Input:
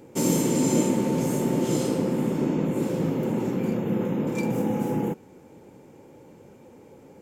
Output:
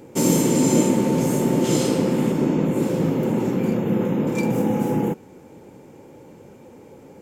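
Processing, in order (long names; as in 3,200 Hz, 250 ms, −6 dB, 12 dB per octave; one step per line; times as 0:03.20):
0:01.64–0:02.32: parametric band 3,800 Hz +4 dB 2.3 octaves
level +4.5 dB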